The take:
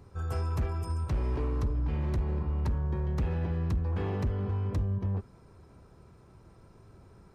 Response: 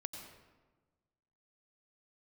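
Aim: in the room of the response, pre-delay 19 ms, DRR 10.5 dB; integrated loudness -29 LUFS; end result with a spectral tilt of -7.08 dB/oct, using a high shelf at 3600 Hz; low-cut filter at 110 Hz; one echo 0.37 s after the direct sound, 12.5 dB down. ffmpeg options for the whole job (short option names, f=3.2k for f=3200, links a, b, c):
-filter_complex "[0:a]highpass=110,highshelf=f=3.6k:g=3.5,aecho=1:1:370:0.237,asplit=2[a][b];[1:a]atrim=start_sample=2205,adelay=19[c];[b][c]afir=irnorm=-1:irlink=0,volume=-8.5dB[d];[a][d]amix=inputs=2:normalize=0,volume=6.5dB"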